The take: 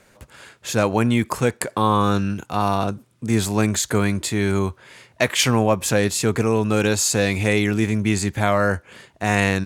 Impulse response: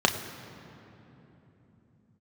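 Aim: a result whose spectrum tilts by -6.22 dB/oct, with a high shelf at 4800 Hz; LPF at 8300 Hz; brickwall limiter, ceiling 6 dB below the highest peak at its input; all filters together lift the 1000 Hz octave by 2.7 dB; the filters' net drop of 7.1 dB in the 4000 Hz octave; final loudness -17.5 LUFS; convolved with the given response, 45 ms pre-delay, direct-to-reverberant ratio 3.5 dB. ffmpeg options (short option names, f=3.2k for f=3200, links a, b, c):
-filter_complex "[0:a]lowpass=8.3k,equalizer=f=1k:t=o:g=4,equalizer=f=4k:t=o:g=-7,highshelf=f=4.8k:g=-5,alimiter=limit=-8.5dB:level=0:latency=1,asplit=2[a][b];[1:a]atrim=start_sample=2205,adelay=45[c];[b][c]afir=irnorm=-1:irlink=0,volume=-18.5dB[d];[a][d]amix=inputs=2:normalize=0,volume=2.5dB"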